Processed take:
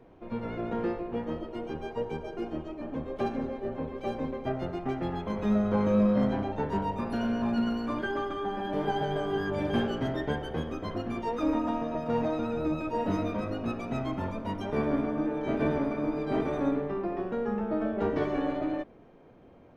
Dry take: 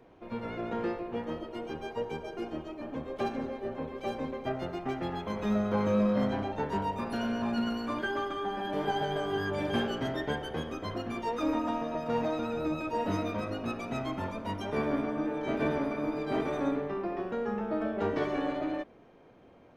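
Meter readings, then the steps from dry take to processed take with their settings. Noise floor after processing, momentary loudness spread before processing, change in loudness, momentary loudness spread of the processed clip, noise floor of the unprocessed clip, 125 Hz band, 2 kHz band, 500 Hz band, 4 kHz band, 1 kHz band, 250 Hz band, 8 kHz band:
-54 dBFS, 7 LU, +2.0 dB, 7 LU, -56 dBFS, +3.5 dB, -1.0 dB, +1.5 dB, -2.5 dB, 0.0 dB, +3.0 dB, no reading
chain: tilt EQ -1.5 dB/octave; hum notches 50/100 Hz

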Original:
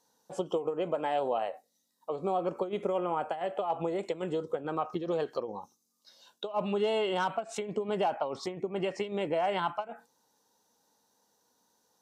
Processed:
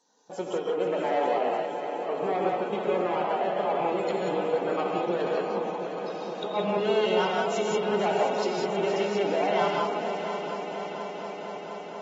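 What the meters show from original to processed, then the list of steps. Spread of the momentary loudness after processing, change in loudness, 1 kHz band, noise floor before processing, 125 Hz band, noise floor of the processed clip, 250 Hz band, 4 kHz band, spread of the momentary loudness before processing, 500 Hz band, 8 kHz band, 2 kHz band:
9 LU, +5.0 dB, +5.5 dB, -75 dBFS, +3.5 dB, -38 dBFS, +5.0 dB, +6.5 dB, 10 LU, +6.0 dB, +6.5 dB, +8.0 dB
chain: rattle on loud lows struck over -40 dBFS, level -43 dBFS; saturation -25.5 dBFS, distortion -16 dB; brick-wall FIR high-pass 160 Hz; multi-head delay 237 ms, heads second and third, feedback 75%, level -10 dB; gated-style reverb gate 210 ms rising, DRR -1 dB; trim +2 dB; AAC 24 kbps 48 kHz

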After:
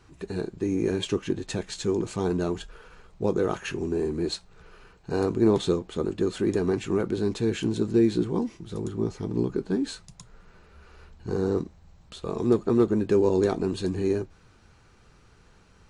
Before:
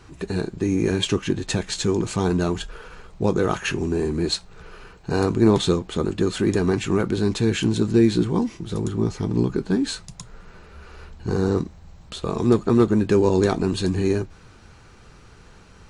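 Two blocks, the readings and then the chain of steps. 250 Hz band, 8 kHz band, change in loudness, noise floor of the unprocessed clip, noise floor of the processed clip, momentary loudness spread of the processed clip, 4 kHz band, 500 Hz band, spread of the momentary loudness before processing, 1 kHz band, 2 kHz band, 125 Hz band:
-5.0 dB, -8.5 dB, -4.5 dB, -48 dBFS, -57 dBFS, 11 LU, -8.5 dB, -3.0 dB, 10 LU, -6.5 dB, -8.0 dB, -7.5 dB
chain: dynamic bell 430 Hz, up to +6 dB, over -30 dBFS, Q 0.82; trim -8.5 dB

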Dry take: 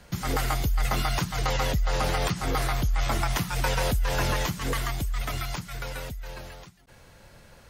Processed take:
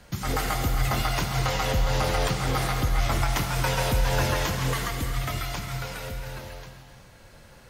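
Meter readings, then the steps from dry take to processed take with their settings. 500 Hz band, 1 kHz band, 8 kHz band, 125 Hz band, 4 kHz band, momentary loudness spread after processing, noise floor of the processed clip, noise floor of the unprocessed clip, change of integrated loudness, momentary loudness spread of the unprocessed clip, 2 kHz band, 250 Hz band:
+2.0 dB, +1.5 dB, +1.5 dB, +2.5 dB, +1.5 dB, 11 LU, -50 dBFS, -53 dBFS, +1.5 dB, 10 LU, +1.5 dB, +1.5 dB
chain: gated-style reverb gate 430 ms flat, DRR 3.5 dB

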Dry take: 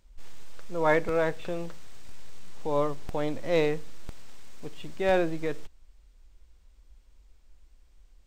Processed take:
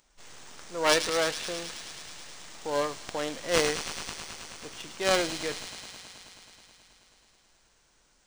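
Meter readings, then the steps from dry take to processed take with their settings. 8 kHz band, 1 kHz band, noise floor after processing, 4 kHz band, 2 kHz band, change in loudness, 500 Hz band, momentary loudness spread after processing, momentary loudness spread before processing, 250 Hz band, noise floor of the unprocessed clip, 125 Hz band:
+18.5 dB, 0.0 dB, -66 dBFS, +13.5 dB, +2.5 dB, -1.0 dB, -2.5 dB, 20 LU, 18 LU, -4.0 dB, -58 dBFS, -7.0 dB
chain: tracing distortion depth 0.39 ms; RIAA curve recording; on a send: feedback echo behind a high-pass 107 ms, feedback 83%, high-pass 3.4 kHz, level -6 dB; on the sum: decimation joined by straight lines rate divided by 3×

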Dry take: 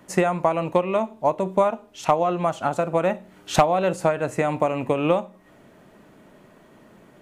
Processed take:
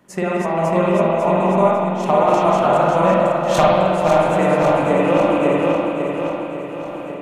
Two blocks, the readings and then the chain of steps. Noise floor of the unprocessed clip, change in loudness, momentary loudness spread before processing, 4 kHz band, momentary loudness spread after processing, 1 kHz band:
-53 dBFS, +6.5 dB, 4 LU, +5.0 dB, 8 LU, +6.5 dB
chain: backward echo that repeats 274 ms, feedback 75%, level -2.5 dB; random-step tremolo 3.5 Hz; spring tank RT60 1.6 s, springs 43/48 ms, chirp 35 ms, DRR -4 dB; trim +1.5 dB

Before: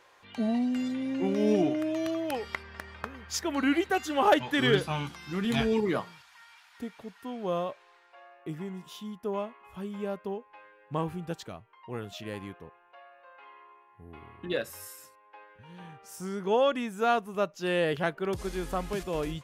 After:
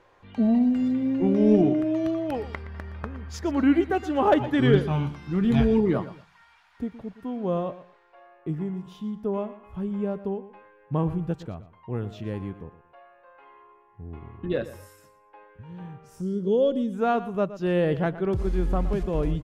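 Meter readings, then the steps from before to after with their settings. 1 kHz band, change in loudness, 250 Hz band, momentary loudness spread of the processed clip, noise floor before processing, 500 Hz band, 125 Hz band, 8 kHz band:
+0.5 dB, +5.0 dB, +7.0 dB, 17 LU, -60 dBFS, +4.0 dB, +10.0 dB, no reading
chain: time-frequency box 16.21–16.93 s, 600–2800 Hz -16 dB; tilt EQ -3.5 dB/octave; feedback delay 118 ms, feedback 23%, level -15 dB

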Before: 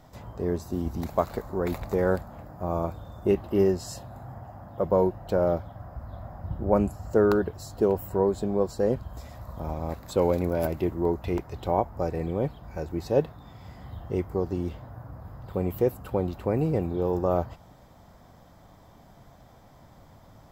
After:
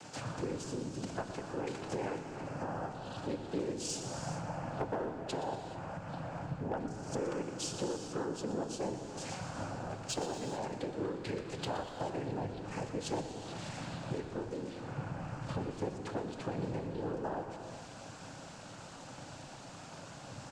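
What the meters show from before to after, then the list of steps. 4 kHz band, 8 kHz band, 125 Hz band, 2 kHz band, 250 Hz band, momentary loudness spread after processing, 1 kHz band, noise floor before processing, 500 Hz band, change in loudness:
+3.5 dB, +4.0 dB, -9.5 dB, -3.5 dB, -10.0 dB, 11 LU, -7.0 dB, -53 dBFS, -13.5 dB, -12.0 dB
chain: treble shelf 2.2 kHz +11.5 dB; compression 12:1, threshold -37 dBFS, peak gain reduction 21.5 dB; noise-vocoded speech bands 8; hard clipper -31.5 dBFS, distortion -22 dB; frequency-shifting echo 120 ms, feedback 55%, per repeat -47 Hz, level -13 dB; gated-style reverb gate 460 ms flat, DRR 6.5 dB; trim +3.5 dB

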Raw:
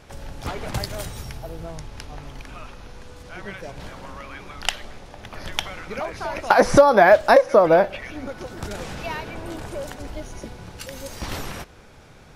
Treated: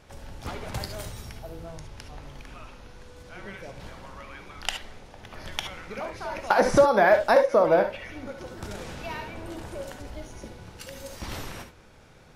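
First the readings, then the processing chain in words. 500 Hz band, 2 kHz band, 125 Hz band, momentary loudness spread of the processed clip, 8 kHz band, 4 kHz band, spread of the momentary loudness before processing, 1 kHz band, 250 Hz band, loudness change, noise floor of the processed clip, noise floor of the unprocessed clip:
-5.0 dB, -5.0 dB, -5.0 dB, 24 LU, -5.5 dB, -5.0 dB, 24 LU, -5.5 dB, -5.5 dB, -5.0 dB, -52 dBFS, -47 dBFS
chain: gated-style reverb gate 90 ms rising, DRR 6.5 dB; trim -6 dB

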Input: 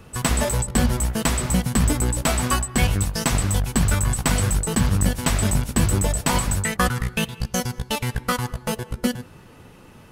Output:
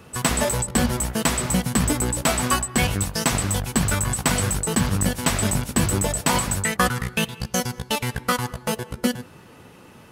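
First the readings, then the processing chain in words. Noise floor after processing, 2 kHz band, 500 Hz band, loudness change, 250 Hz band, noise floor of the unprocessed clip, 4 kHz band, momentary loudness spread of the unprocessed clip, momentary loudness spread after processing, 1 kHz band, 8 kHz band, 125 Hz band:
-47 dBFS, +1.5 dB, +1.0 dB, 0.0 dB, 0.0 dB, -47 dBFS, +1.5 dB, 6 LU, 5 LU, +1.5 dB, +1.5 dB, -3.0 dB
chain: high-pass 140 Hz 6 dB/octave; trim +1.5 dB

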